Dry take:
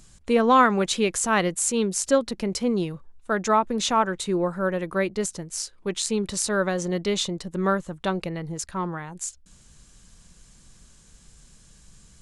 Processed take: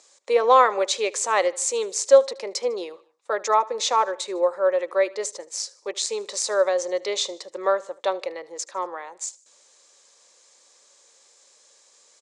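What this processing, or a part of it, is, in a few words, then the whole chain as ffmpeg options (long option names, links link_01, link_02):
phone speaker on a table: -af "highpass=frequency=280:poles=1,highpass=frequency=440:width=0.5412,highpass=frequency=440:width=1.3066,equalizer=frequency=550:width_type=q:width=4:gain=7,equalizer=frequency=1500:width_type=q:width=4:gain=-8,equalizer=frequency=2900:width_type=q:width=4:gain=-7,lowpass=frequency=7600:width=0.5412,lowpass=frequency=7600:width=1.3066,bandreject=frequency=670:width=12,aecho=1:1:76|152|228:0.0794|0.0381|0.0183,volume=3dB"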